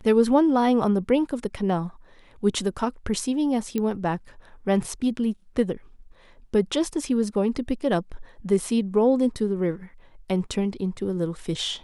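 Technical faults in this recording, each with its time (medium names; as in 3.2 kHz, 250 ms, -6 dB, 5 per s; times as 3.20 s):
3.78 s: pop -14 dBFS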